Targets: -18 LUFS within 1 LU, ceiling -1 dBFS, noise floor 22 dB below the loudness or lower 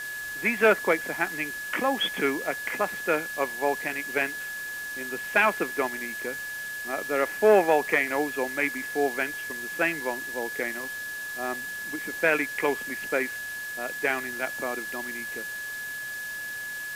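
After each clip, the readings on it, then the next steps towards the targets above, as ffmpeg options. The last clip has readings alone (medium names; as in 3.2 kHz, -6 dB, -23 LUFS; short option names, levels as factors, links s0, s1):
steady tone 1.7 kHz; tone level -33 dBFS; noise floor -35 dBFS; noise floor target -50 dBFS; loudness -27.5 LUFS; peak level -8.0 dBFS; loudness target -18.0 LUFS
-> -af "bandreject=f=1700:w=30"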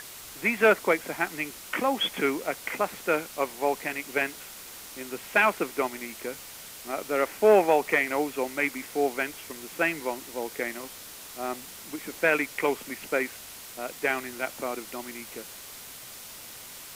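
steady tone not found; noise floor -44 dBFS; noise floor target -50 dBFS
-> -af "afftdn=nr=6:nf=-44"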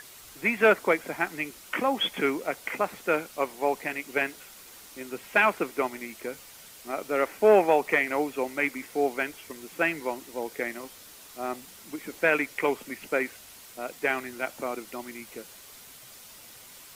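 noise floor -49 dBFS; noise floor target -50 dBFS
-> -af "afftdn=nr=6:nf=-49"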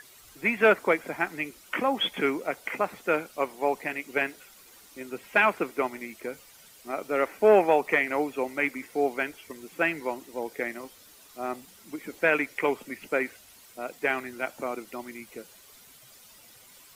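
noise floor -54 dBFS; loudness -27.5 LUFS; peak level -8.5 dBFS; loudness target -18.0 LUFS
-> -af "volume=2.99,alimiter=limit=0.891:level=0:latency=1"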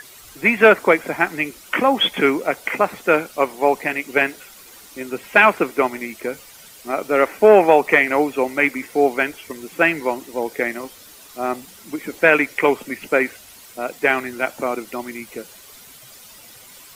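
loudness -18.5 LUFS; peak level -1.0 dBFS; noise floor -44 dBFS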